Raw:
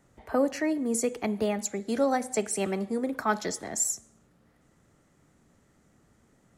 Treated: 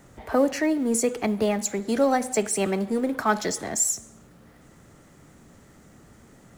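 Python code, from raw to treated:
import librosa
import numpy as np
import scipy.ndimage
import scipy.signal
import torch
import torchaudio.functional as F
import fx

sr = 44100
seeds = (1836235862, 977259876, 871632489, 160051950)

y = fx.law_mismatch(x, sr, coded='mu')
y = y * 10.0 ** (3.5 / 20.0)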